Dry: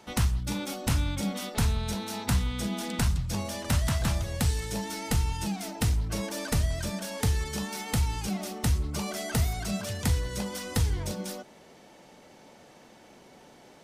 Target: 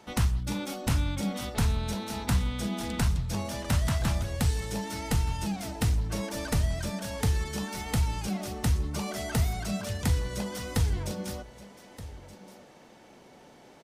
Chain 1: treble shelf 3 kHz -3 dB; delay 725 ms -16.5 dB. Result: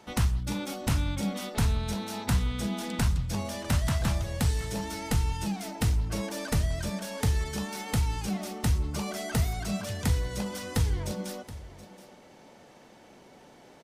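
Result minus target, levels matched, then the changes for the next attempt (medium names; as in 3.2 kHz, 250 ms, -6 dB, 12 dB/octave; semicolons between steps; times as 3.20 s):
echo 499 ms early
change: delay 1224 ms -16.5 dB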